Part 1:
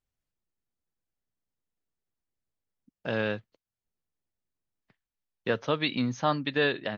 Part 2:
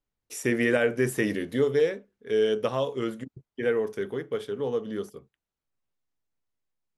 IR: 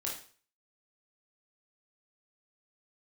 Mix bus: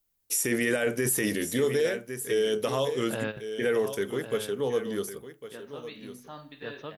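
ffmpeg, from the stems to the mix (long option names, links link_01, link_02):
-filter_complex "[0:a]adelay=50,volume=-3.5dB,asplit=3[link_01][link_02][link_03];[link_02]volume=-20dB[link_04];[link_03]volume=-9.5dB[link_05];[1:a]aemphasis=mode=production:type=75fm,volume=1.5dB,asplit=3[link_06][link_07][link_08];[link_07]volume=-13.5dB[link_09];[link_08]apad=whole_len=309638[link_10];[link_01][link_10]sidechaingate=range=-18dB:threshold=-40dB:ratio=16:detection=peak[link_11];[2:a]atrim=start_sample=2205[link_12];[link_04][link_12]afir=irnorm=-1:irlink=0[link_13];[link_05][link_09]amix=inputs=2:normalize=0,aecho=0:1:1104:1[link_14];[link_11][link_06][link_13][link_14]amix=inputs=4:normalize=0,alimiter=limit=-17dB:level=0:latency=1:release=16"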